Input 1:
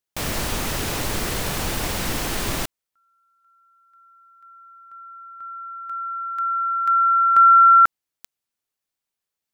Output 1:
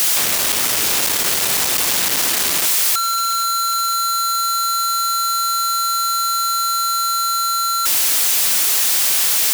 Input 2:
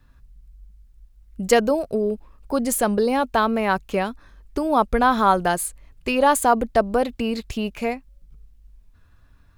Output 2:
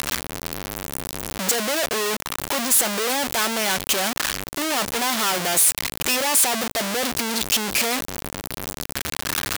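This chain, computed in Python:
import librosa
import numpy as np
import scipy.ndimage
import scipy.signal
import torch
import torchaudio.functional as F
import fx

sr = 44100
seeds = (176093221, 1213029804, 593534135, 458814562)

y = np.sign(x) * np.sqrt(np.mean(np.square(x)))
y = fx.highpass(y, sr, hz=370.0, slope=6)
y = fx.high_shelf(y, sr, hz=2300.0, db=8.0)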